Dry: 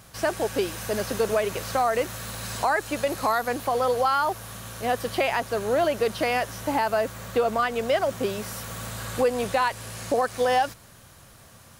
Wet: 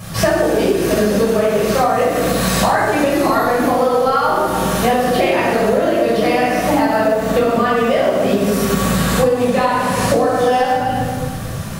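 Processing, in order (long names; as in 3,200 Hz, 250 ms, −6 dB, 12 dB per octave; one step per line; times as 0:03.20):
parametric band 170 Hz +6.5 dB 2.1 octaves
convolution reverb RT60 1.3 s, pre-delay 10 ms, DRR −8.5 dB
downward compressor 12 to 1, threshold −20 dBFS, peak gain reduction 16.5 dB
level +8.5 dB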